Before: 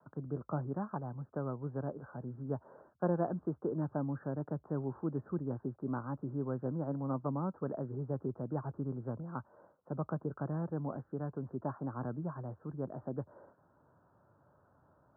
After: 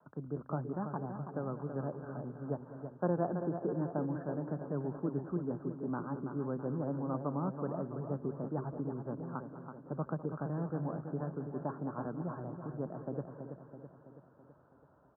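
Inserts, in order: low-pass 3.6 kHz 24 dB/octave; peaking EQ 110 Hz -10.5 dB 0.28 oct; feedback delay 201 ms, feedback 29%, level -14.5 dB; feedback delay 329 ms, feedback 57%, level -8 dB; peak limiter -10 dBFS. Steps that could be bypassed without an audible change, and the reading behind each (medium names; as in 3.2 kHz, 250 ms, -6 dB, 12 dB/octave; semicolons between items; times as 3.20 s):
low-pass 3.6 kHz: input has nothing above 1.4 kHz; peak limiter -10 dBFS: peak at its input -19.0 dBFS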